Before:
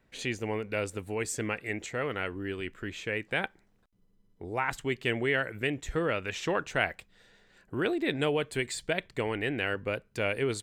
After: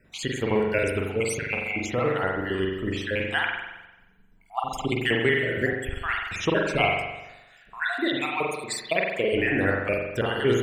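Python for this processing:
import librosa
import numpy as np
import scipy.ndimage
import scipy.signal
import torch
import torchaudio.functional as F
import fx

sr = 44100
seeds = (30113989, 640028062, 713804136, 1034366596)

y = fx.spec_dropout(x, sr, seeds[0], share_pct=60)
y = fx.highpass(y, sr, hz=340.0, slope=6, at=(7.87, 9.32))
y = fx.rev_spring(y, sr, rt60_s=1.0, pass_ms=(42,), chirp_ms=45, drr_db=-1.0)
y = fx.band_squash(y, sr, depth_pct=40, at=(4.79, 5.73))
y = F.gain(torch.from_numpy(y), 7.5).numpy()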